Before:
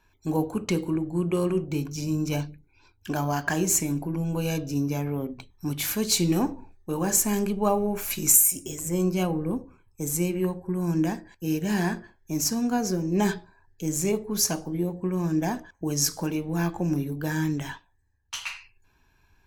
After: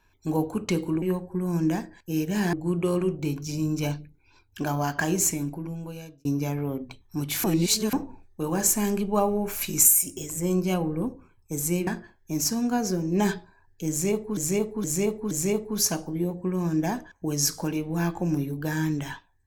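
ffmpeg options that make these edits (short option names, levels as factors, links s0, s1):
-filter_complex "[0:a]asplit=10[s0][s1][s2][s3][s4][s5][s6][s7][s8][s9];[s0]atrim=end=1.022[s10];[s1]atrim=start=10.358:end=11.872[s11];[s2]atrim=start=1.018:end=4.74,asetpts=PTS-STARTPTS,afade=t=out:st=2.652:d=1.07[s12];[s3]atrim=start=4.74:end=5.932,asetpts=PTS-STARTPTS,afade=t=in:d=0.004:c=hsin[s13];[s4]atrim=start=5.928:end=6.422,asetpts=PTS-STARTPTS,areverse[s14];[s5]atrim=start=6.418:end=10.362[s15];[s6]atrim=start=11.868:end=14.372[s16];[s7]atrim=start=13.898:end=14.372[s17];[s8]atrim=start=13.898:end=14.372[s18];[s9]atrim=start=13.898[s19];[s10][s11]acrossfade=d=0.004:c1=hsin:c2=hsin[s20];[s12][s13]concat=n=2:v=0:a=1[s21];[s20][s21]acrossfade=d=0.004:c1=hsin:c2=hsin[s22];[s22][s14]acrossfade=d=0.004:c1=hsin:c2=hsin[s23];[s23][s15]acrossfade=d=0.004:c1=hsin:c2=hsin[s24];[s24][s16]acrossfade=d=0.004:c1=hsin:c2=hsin[s25];[s25][s17]acrossfade=d=0.004:c1=hsin:c2=hsin[s26];[s26][s18]acrossfade=d=0.004:c1=hsin:c2=hsin[s27];[s27][s19]acrossfade=d=0.004:c1=hsin:c2=hsin"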